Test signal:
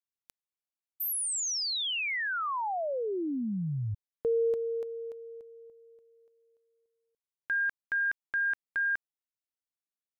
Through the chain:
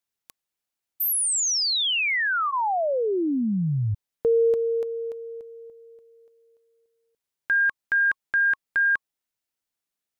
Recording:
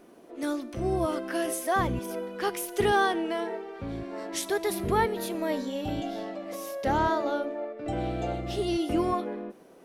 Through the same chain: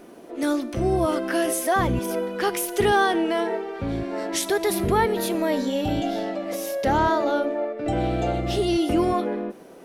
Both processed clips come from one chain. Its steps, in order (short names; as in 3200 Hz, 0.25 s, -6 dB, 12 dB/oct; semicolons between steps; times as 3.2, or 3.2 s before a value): notch 1100 Hz, Q 21; in parallel at +2 dB: limiter -24.5 dBFS; on the sum: gain +1 dB